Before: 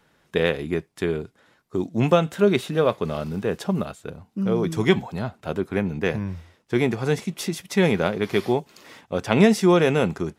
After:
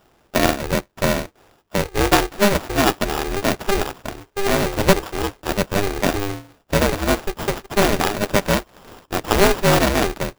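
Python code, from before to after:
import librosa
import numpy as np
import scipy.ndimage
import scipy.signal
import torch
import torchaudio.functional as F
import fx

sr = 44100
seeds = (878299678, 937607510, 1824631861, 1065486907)

p1 = fx.rider(x, sr, range_db=5, speed_s=0.5)
p2 = x + (p1 * librosa.db_to_amplitude(-2.0))
p3 = fx.sample_hold(p2, sr, seeds[0], rate_hz=2100.0, jitter_pct=0)
p4 = p3 * np.sign(np.sin(2.0 * np.pi * 200.0 * np.arange(len(p3)) / sr))
y = p4 * librosa.db_to_amplitude(-2.0)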